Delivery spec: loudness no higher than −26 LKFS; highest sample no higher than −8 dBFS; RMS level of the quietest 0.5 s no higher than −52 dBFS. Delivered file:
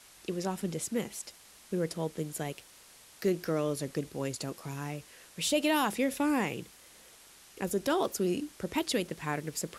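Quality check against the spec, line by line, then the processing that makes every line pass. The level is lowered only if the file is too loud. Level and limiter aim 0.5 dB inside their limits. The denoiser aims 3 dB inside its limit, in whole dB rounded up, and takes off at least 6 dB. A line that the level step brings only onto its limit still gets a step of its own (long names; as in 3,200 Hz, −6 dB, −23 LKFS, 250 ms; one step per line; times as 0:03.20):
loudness −33.0 LKFS: in spec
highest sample −17.0 dBFS: in spec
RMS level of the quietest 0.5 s −56 dBFS: in spec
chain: no processing needed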